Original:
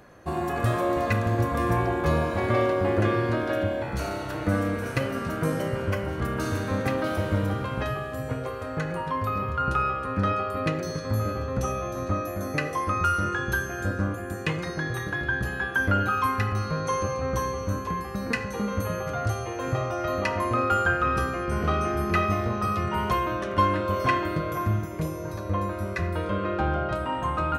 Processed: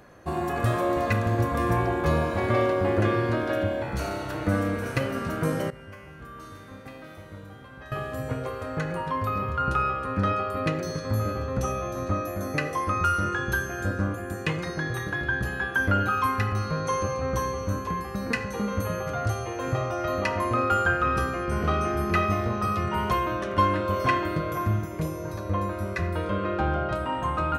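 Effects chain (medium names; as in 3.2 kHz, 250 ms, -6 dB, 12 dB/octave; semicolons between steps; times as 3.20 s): 5.70–7.92 s: feedback comb 51 Hz, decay 1.3 s, harmonics odd, mix 90%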